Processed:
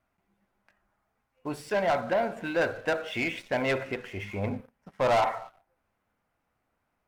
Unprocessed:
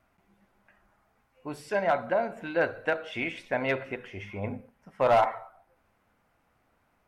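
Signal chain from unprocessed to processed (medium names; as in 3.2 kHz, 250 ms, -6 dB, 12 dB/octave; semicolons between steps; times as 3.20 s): waveshaping leveller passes 2; trim -4 dB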